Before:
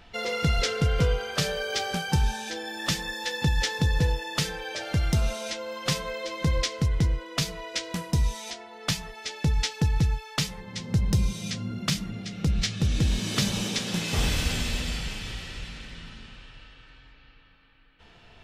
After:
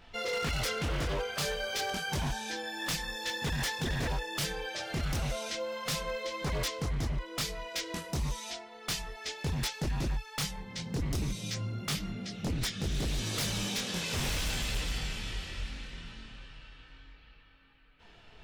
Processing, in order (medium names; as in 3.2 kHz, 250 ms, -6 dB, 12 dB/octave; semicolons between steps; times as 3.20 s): dynamic bell 180 Hz, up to -5 dB, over -36 dBFS, Q 0.83; chorus voices 4, 0.31 Hz, delay 23 ms, depth 4 ms; wavefolder -26.5 dBFS